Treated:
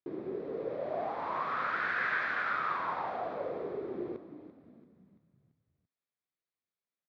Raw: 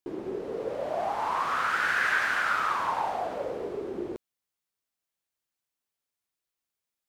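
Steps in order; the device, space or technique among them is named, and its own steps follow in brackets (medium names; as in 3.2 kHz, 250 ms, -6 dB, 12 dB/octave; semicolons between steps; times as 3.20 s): frequency-shifting delay pedal into a guitar cabinet (frequency-shifting echo 338 ms, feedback 48%, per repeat -55 Hz, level -13 dB; cabinet simulation 94–3700 Hz, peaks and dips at 150 Hz +3 dB, 870 Hz -6 dB, 1.5 kHz -3 dB, 2.9 kHz -10 dB); trim -3.5 dB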